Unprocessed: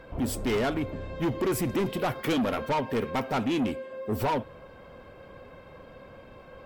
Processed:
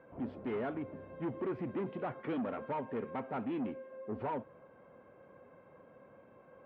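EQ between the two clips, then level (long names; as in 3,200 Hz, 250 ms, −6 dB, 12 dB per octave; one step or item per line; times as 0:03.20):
band-pass filter 150–2,200 Hz
high-frequency loss of the air 340 metres
−8.5 dB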